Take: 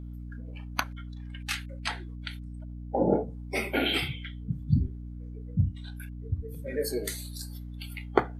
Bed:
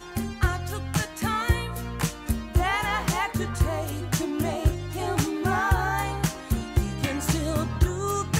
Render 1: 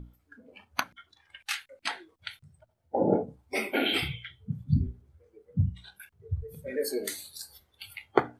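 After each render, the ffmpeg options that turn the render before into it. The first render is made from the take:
-af "bandreject=f=60:t=h:w=6,bandreject=f=120:t=h:w=6,bandreject=f=180:t=h:w=6,bandreject=f=240:t=h:w=6,bandreject=f=300:t=h:w=6"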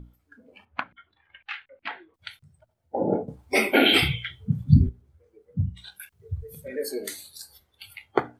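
-filter_complex "[0:a]asettb=1/sr,asplit=3[s0][s1][s2];[s0]atrim=end=0.654[s3];[s1]atrim=start=0.65:end=2.14,asetpts=PTS-STARTPTS,afade=t=in:d=0.004:c=qsin,afade=t=out:st=1.486:d=0.004:c=qsin,lowpass=f=2900:w=0.5412,lowpass=f=2900:w=1.3066[s4];[s2]atrim=start=2.136[s5];[s3][s4]acrossfade=d=0.004:c1=hsin:c2=qsin[s6];[s6][s5]acrossfade=d=0.004:c1=qsin:c2=hsin,asettb=1/sr,asplit=3[s7][s8][s9];[s7]atrim=end=5.774[s10];[s8]atrim=start=5.77:end=6.68,asetpts=PTS-STARTPTS,afade=t=in:d=0.004:c=qsin,afade=t=out:st=0.906:d=0.004:c=qsin,highshelf=f=2100:g=9[s11];[s9]atrim=start=6.676[s12];[s10][s11]acrossfade=d=0.004:c1=hsin:c2=qsin[s13];[s13][s12]acrossfade=d=0.004:c1=qsin:c2=hsin,asplit=3[s14][s15][s16];[s14]atrim=end=3.282[s17];[s15]atrim=start=3.278:end=4.892,asetpts=PTS-STARTPTS,volume=2.82[s18];[s16]atrim=start=4.888[s19];[s17][s18]acrossfade=d=0.004:c1=hsin:c2=hsin[s20];[s20][s19]acrossfade=d=0.004:c1=hsin:c2=hsin"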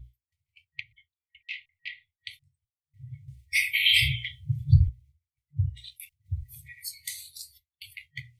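-af "agate=range=0.0224:threshold=0.00562:ratio=3:detection=peak,afftfilt=real='re*(1-between(b*sr/4096,140,1900))':imag='im*(1-between(b*sr/4096,140,1900))':win_size=4096:overlap=0.75"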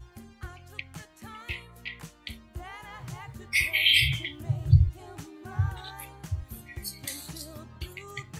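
-filter_complex "[1:a]volume=0.126[s0];[0:a][s0]amix=inputs=2:normalize=0"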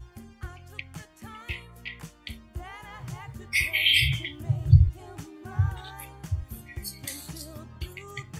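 -af "lowshelf=f=230:g=3,bandreject=f=4000:w=15"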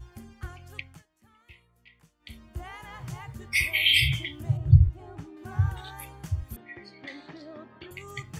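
-filter_complex "[0:a]asettb=1/sr,asplit=3[s0][s1][s2];[s0]atrim=end=4.574[s3];[s1]atrim=start=4.57:end=5.37,asetpts=PTS-STARTPTS,afade=t=in:d=0.004:c=qsin,afade=t=out:st=0.796:d=0.004:c=qsin,lowpass=f=1400:p=1[s4];[s2]atrim=start=5.366[s5];[s3][s4]acrossfade=d=0.004:c1=hsin:c2=qsin[s6];[s6][s5]acrossfade=d=0.004:c1=qsin:c2=hsin,asettb=1/sr,asplit=3[s7][s8][s9];[s7]atrim=end=6.564[s10];[s8]atrim=start=6.56:end=7.91,asetpts=PTS-STARTPTS,afade=t=in:d=0.004:c=qsin,afade=t=out:st=1.346:d=0.004:c=qsin,highpass=270,equalizer=f=280:t=q:w=4:g=4,equalizer=f=400:t=q:w=4:g=5,equalizer=f=680:t=q:w=4:g=4,equalizer=f=1800:t=q:w=4:g=5,equalizer=f=2800:t=q:w=4:g=-5,lowpass=f=3400:w=0.5412,lowpass=f=3400:w=1.3066[s11];[s9]atrim=start=7.906[s12];[s10][s11]acrossfade=d=0.004:c1=hsin:c2=qsin[s13];[s13][s12]acrossfade=d=0.004:c1=qsin:c2=hsin,asplit=3[s14][s15][s16];[s14]atrim=end=1.03,asetpts=PTS-STARTPTS,afade=t=out:st=0.78:d=0.25:silence=0.125893[s17];[s15]atrim=start=1.03:end=2.19,asetpts=PTS-STARTPTS,volume=0.126[s18];[s16]atrim=start=2.19,asetpts=PTS-STARTPTS,afade=t=in:d=0.25:silence=0.125893[s19];[s17][s18][s19]concat=n=3:v=0:a=1"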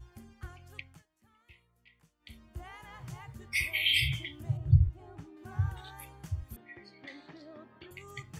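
-af "volume=0.501"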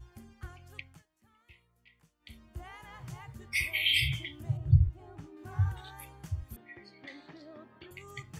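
-filter_complex "[0:a]asettb=1/sr,asplit=3[s0][s1][s2];[s0]atrim=end=5.214[s3];[s1]atrim=start=5.21:end=5.72,asetpts=PTS-STARTPTS,afade=t=in:d=0.004:c=qsin,afade=t=out:st=0.506:d=0.004:c=qsin,asplit=2[s4][s5];[s5]adelay=20,volume=0.562[s6];[s4][s6]amix=inputs=2:normalize=0,atrim=end_sample=22491[s7];[s2]atrim=start=5.716[s8];[s3][s7]acrossfade=d=0.004:c1=hsin:c2=qsin[s9];[s9][s8]acrossfade=d=0.004:c1=qsin:c2=hsin"

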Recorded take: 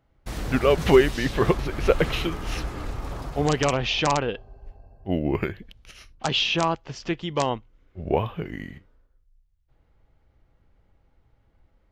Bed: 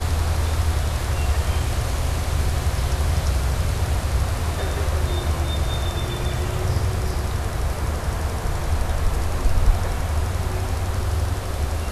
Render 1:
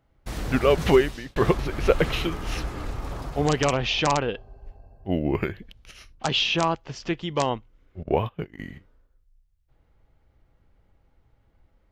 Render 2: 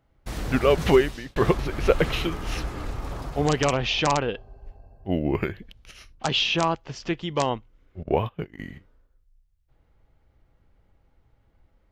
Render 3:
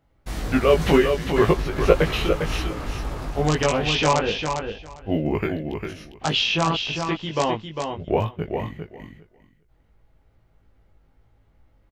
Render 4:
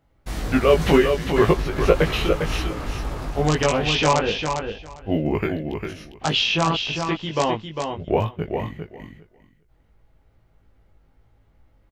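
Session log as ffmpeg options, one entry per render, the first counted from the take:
-filter_complex "[0:a]asettb=1/sr,asplit=3[s0][s1][s2];[s0]atrim=end=8.034[s3];[s1]atrim=start=8.03:end=8.59,asetpts=PTS-STARTPTS,afade=t=in:d=0.004:c=qsin,afade=t=out:st=0.556:d=0.004:c=qsin,agate=range=0.112:threshold=0.0251:ratio=16:release=100:detection=peak[s4];[s2]atrim=start=8.586[s5];[s3][s4]acrossfade=d=0.004:c1=hsin:c2=qsin[s6];[s6][s5]acrossfade=d=0.004:c1=qsin:c2=hsin,asplit=2[s7][s8];[s7]atrim=end=1.36,asetpts=PTS-STARTPTS,afade=t=out:st=0.86:d=0.5[s9];[s8]atrim=start=1.36,asetpts=PTS-STARTPTS,afade=t=in:d=0.004:c=hsin[s10];[s9][s10]concat=n=2:v=0:a=1"
-af anull
-filter_complex "[0:a]asplit=2[s0][s1];[s1]adelay=19,volume=0.708[s2];[s0][s2]amix=inputs=2:normalize=0,asplit=2[s3][s4];[s4]aecho=0:1:402|804|1206:0.501|0.0752|0.0113[s5];[s3][s5]amix=inputs=2:normalize=0"
-af "volume=1.12,alimiter=limit=0.708:level=0:latency=1"

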